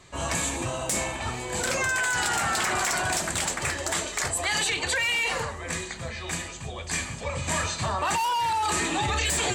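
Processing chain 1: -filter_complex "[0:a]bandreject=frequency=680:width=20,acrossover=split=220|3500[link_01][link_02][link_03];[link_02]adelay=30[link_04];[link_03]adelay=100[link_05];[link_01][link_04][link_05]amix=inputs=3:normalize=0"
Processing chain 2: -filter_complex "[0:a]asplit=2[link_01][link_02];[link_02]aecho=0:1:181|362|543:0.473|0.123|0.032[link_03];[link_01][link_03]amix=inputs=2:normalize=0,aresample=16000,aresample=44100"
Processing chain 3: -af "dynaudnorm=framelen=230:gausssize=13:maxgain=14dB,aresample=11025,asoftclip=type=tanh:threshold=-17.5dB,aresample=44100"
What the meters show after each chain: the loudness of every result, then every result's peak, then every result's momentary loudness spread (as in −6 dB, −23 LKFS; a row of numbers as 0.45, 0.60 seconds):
−27.0, −26.0, −22.0 LKFS; −12.5, −13.5, −13.0 dBFS; 8, 8, 9 LU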